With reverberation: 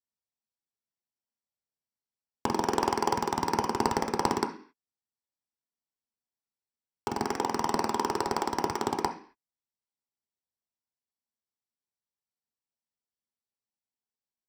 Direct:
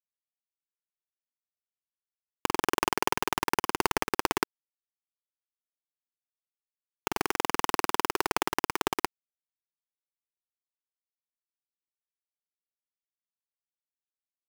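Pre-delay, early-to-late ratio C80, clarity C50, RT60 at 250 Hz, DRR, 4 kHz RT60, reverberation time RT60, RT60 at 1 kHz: 7 ms, 16.0 dB, 11.0 dB, 0.55 s, 2.5 dB, n/a, 0.45 s, 0.45 s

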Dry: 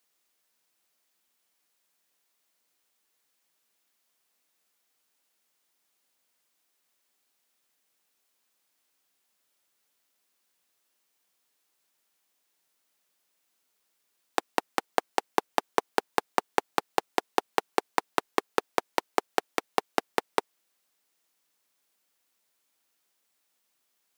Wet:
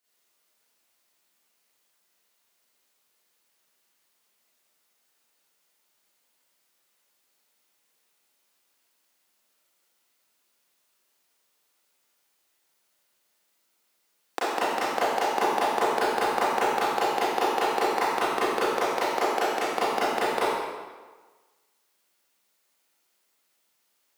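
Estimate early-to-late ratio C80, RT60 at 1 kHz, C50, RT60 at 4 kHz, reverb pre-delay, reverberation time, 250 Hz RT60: -0.5 dB, 1.4 s, -4.5 dB, 1.1 s, 29 ms, 1.4 s, 1.3 s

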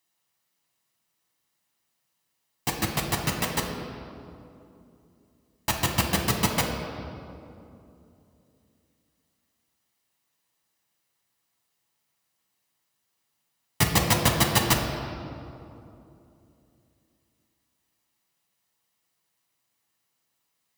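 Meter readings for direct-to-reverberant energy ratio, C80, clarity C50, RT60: 0.0 dB, 5.5 dB, 4.0 dB, 2.8 s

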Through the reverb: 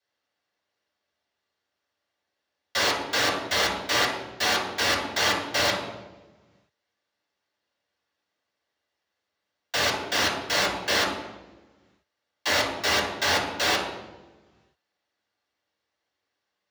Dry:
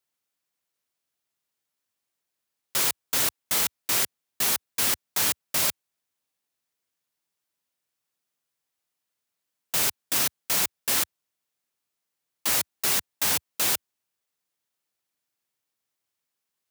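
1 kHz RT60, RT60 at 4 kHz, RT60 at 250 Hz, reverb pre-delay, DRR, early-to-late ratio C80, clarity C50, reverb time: 1.0 s, 0.80 s, 1.5 s, 3 ms, -6.5 dB, 6.5 dB, 3.5 dB, 1.2 s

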